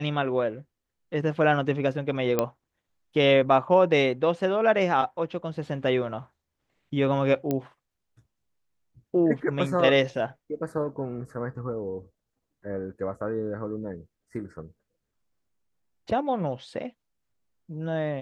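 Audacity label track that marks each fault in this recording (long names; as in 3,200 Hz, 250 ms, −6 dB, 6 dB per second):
2.390000	2.390000	click −9 dBFS
7.510000	7.510000	click −14 dBFS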